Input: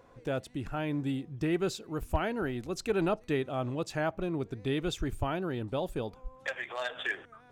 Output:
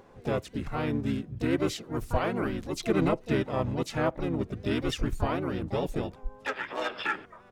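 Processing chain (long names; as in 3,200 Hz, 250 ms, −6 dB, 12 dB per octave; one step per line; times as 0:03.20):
pitch-shifted copies added −12 semitones −7 dB, −4 semitones −1 dB, +7 semitones −10 dB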